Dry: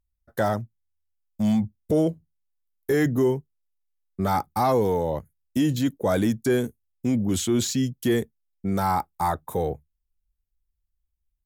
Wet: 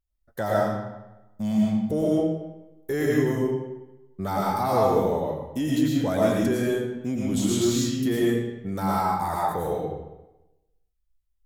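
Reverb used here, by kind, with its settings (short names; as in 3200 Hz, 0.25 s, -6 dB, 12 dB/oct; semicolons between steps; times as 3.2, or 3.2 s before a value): digital reverb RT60 1 s, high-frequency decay 0.8×, pre-delay 70 ms, DRR -5 dB; gain -5.5 dB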